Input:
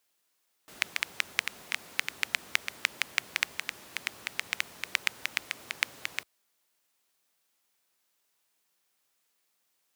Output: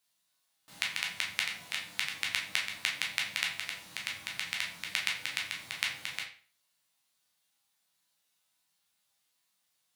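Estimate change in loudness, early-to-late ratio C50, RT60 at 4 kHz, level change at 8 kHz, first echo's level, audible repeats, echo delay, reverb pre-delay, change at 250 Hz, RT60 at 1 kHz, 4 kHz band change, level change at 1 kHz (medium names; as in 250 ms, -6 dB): -1.0 dB, 7.0 dB, 0.35 s, -0.5 dB, no echo, no echo, no echo, 10 ms, -2.0 dB, 0.40 s, +1.0 dB, -2.5 dB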